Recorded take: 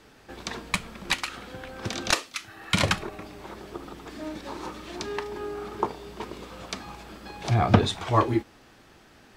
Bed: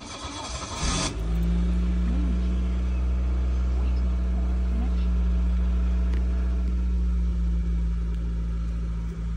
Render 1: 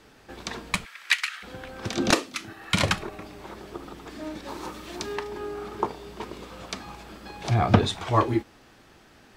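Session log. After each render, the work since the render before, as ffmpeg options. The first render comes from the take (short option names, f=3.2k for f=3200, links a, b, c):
-filter_complex "[0:a]asplit=3[a][b][c];[a]afade=t=out:st=0.84:d=0.02[d];[b]highpass=f=1.8k:t=q:w=2.2,afade=t=in:st=0.84:d=0.02,afade=t=out:st=1.42:d=0.02[e];[c]afade=t=in:st=1.42:d=0.02[f];[d][e][f]amix=inputs=3:normalize=0,asettb=1/sr,asplit=3[g][h][i];[g]atrim=end=1.974[j];[h]atrim=start=1.97:end=2.53,asetpts=PTS-STARTPTS,afade=t=in:d=0.004:c=qsin,afade=t=out:st=0.556:d=0.004:c=qsin,equalizer=f=250:t=o:w=2.3:g=13.5[k];[i]atrim=start=2.526[l];[j][k]acrossfade=d=0.004:c1=hsin:c2=qsin[m];[m][l]acrossfade=d=0.004:c1=qsin:c2=hsin,asettb=1/sr,asplit=3[n][o][p];[n]atrim=end=4.484[q];[o]atrim=start=4.48:end=5.15,asetpts=PTS-STARTPTS,afade=t=in:d=0.004:c=qsin,afade=t=out:st=0.666:d=0.004:c=qsin,highshelf=f=9.5k:g=9[r];[p]atrim=start=5.146[s];[q][r]acrossfade=d=0.004:c1=hsin:c2=qsin[t];[t][s]acrossfade=d=0.004:c1=qsin:c2=hsin"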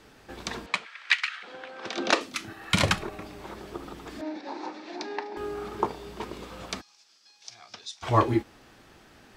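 -filter_complex "[0:a]asettb=1/sr,asplit=3[a][b][c];[a]atrim=end=0.664[d];[b]atrim=start=0.66:end=2.21,asetpts=PTS-STARTPTS,afade=t=in:d=0.004:c=qsin,afade=t=out:st=1.546:d=0.004:c=qsin,highpass=410,lowpass=4.7k[e];[c]atrim=start=2.206[f];[d][e]acrossfade=d=0.004:c1=hsin:c2=qsin[g];[g][f]acrossfade=d=0.004:c1=qsin:c2=hsin,asettb=1/sr,asplit=3[h][i][j];[h]atrim=end=4.214[k];[i]atrim=start=4.21:end=5.37,asetpts=PTS-STARTPTS,afade=t=in:d=0.004:c=qsin,afade=t=out:st=1.156:d=0.004:c=qsin,highpass=f=270:w=0.5412,highpass=f=270:w=1.3066,equalizer=f=290:t=q:w=4:g=4,equalizer=f=430:t=q:w=4:g=-5,equalizer=f=800:t=q:w=4:g=6,equalizer=f=1.2k:t=q:w=4:g=-8,equalizer=f=3.1k:t=q:w=4:g=-9,lowpass=f=5k:w=0.5412,lowpass=f=5k:w=1.3066[l];[j]atrim=start=5.366[m];[k][l]acrossfade=d=0.004:c1=hsin:c2=qsin[n];[n][m]acrossfade=d=0.004:c1=qsin:c2=hsin,asplit=3[o][p][q];[o]afade=t=out:st=6.8:d=0.02[r];[p]bandpass=f=5.5k:t=q:w=3.5,afade=t=in:st=6.8:d=0.02,afade=t=out:st=8.02:d=0.02[s];[q]afade=t=in:st=8.02:d=0.02[t];[r][s][t]amix=inputs=3:normalize=0"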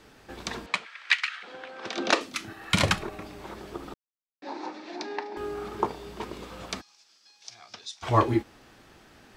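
-filter_complex "[0:a]asplit=3[a][b][c];[a]atrim=end=3.94,asetpts=PTS-STARTPTS,afade=t=out:st=3.936:d=0.004:c=hsin[d];[b]atrim=start=3.94:end=4.42,asetpts=PTS-STARTPTS,volume=0[e];[c]atrim=start=4.42,asetpts=PTS-STARTPTS,afade=t=in:d=0.004:c=hsin[f];[d][e][f]concat=n=3:v=0:a=1"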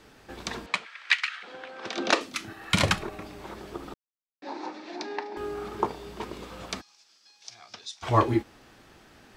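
-af anull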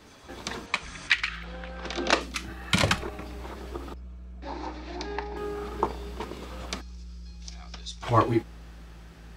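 -filter_complex "[1:a]volume=-18dB[a];[0:a][a]amix=inputs=2:normalize=0"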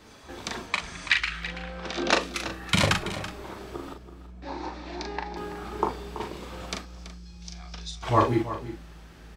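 -filter_complex "[0:a]asplit=2[a][b];[b]adelay=40,volume=-5.5dB[c];[a][c]amix=inputs=2:normalize=0,aecho=1:1:331:0.224"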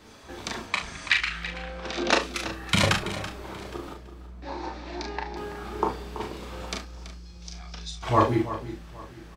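-filter_complex "[0:a]asplit=2[a][b];[b]adelay=31,volume=-9dB[c];[a][c]amix=inputs=2:normalize=0,aecho=1:1:815:0.0668"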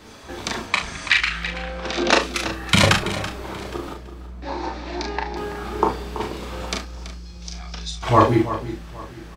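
-af "volume=6.5dB,alimiter=limit=-2dB:level=0:latency=1"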